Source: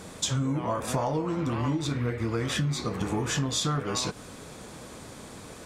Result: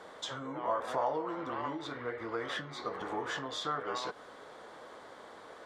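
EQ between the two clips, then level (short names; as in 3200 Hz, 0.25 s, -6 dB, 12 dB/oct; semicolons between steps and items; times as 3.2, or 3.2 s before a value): three-band isolator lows -23 dB, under 400 Hz, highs -21 dB, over 3400 Hz; bell 2500 Hz -13 dB 0.25 oct; -1.0 dB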